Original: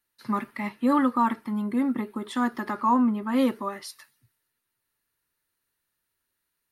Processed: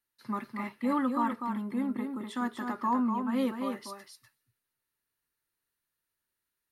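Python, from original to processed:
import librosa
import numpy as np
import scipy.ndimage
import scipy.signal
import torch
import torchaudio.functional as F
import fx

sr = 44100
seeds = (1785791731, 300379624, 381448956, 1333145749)

y = x + 10.0 ** (-5.5 / 20.0) * np.pad(x, (int(247 * sr / 1000.0), 0))[:len(x)]
y = F.gain(torch.from_numpy(y), -7.0).numpy()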